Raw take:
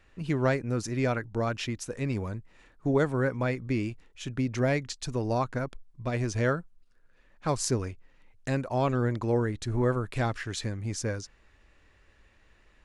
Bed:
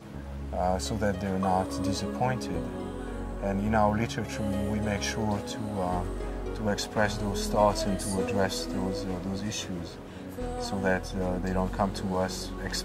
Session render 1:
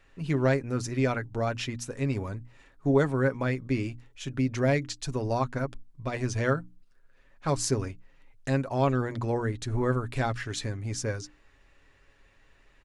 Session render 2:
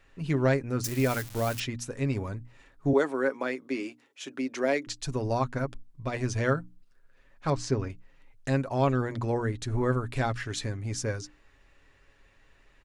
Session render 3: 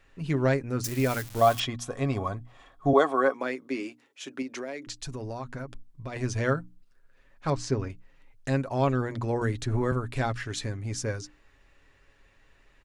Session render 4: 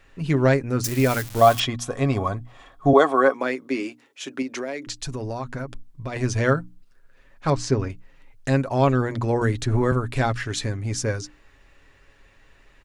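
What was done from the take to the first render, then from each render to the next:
notches 60/120/180/240/300 Hz; comb 7.3 ms, depth 38%
0.84–1.6 switching spikes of -25.5 dBFS; 2.93–4.87 HPF 270 Hz 24 dB/oct; 7.5–7.9 air absorption 120 m
1.41–3.34 small resonant body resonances 730/1100/3300 Hz, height 16 dB, ringing for 30 ms; 4.42–6.16 compressor, threshold -32 dBFS; 9.41–9.92 three-band squash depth 70%
gain +6 dB; limiter -3 dBFS, peak gain reduction 2 dB

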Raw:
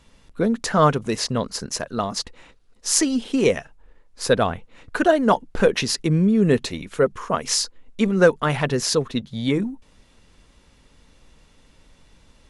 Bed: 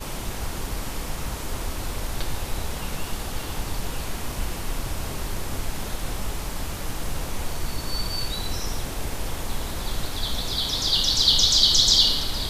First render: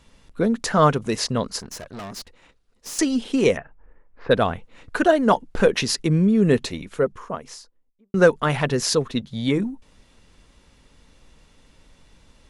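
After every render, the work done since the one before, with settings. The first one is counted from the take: 1.6–2.99 tube stage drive 32 dB, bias 0.8; 3.57–4.31 LPF 2100 Hz 24 dB/oct; 6.5–8.14 studio fade out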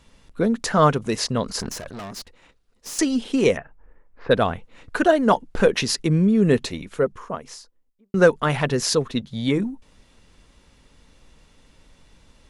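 1.46–1.98 sustainer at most 30 dB/s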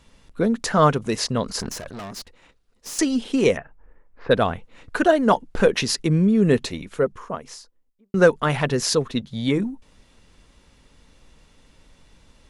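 nothing audible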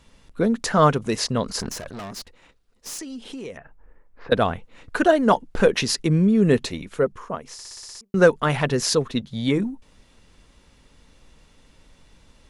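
2.97–4.32 compressor 4:1, threshold -35 dBFS; 7.53 stutter in place 0.06 s, 8 plays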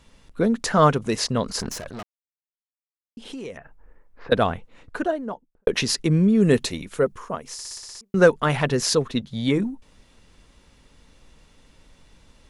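2.03–3.17 mute; 4.43–5.67 studio fade out; 6.4–7.78 high shelf 6100 Hz +8 dB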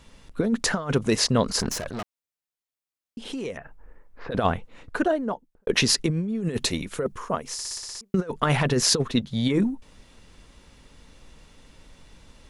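negative-ratio compressor -21 dBFS, ratio -0.5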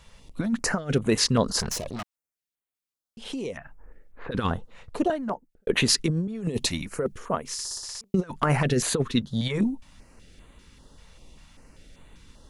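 stepped notch 5.1 Hz 290–5300 Hz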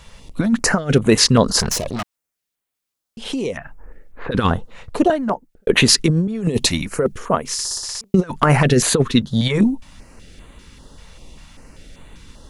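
gain +9 dB; limiter -2 dBFS, peak gain reduction 1.5 dB

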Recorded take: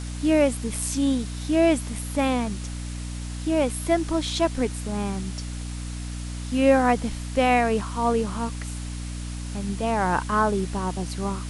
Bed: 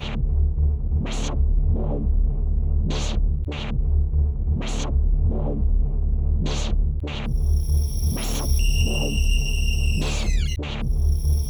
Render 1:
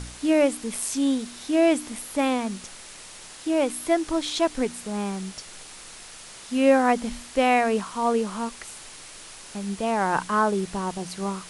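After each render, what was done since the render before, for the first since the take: de-hum 60 Hz, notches 5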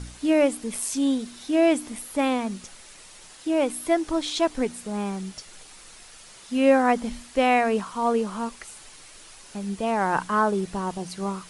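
denoiser 6 dB, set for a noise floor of -44 dBFS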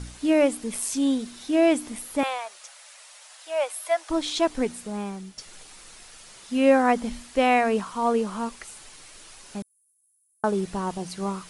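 2.23–4.1 Chebyshev high-pass 580 Hz, order 4; 4.71–5.38 fade out, to -8.5 dB; 9.62–10.44 inverse Chebyshev high-pass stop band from 3000 Hz, stop band 80 dB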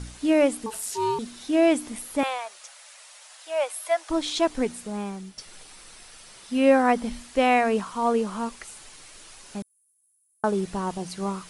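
0.66–1.19 ring modulator 660 Hz; 5.3–7.18 notch 6800 Hz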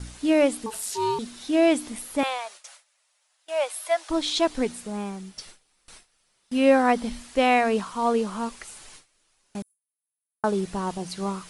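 gate with hold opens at -34 dBFS; dynamic EQ 4000 Hz, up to +4 dB, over -46 dBFS, Q 1.7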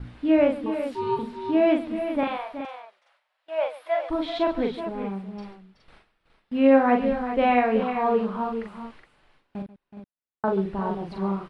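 air absorption 440 m; on a send: tapped delay 41/137/374/418 ms -4/-16/-11.5/-10 dB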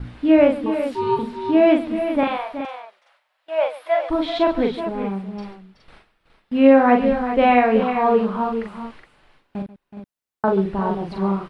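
gain +5.5 dB; limiter -2 dBFS, peak gain reduction 2.5 dB

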